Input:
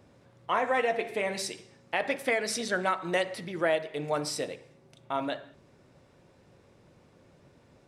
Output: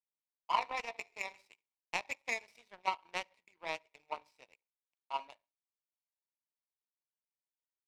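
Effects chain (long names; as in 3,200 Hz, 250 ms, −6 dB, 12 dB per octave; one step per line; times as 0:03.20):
pair of resonant band-passes 1,500 Hz, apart 1.3 octaves
power curve on the samples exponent 2
level +8 dB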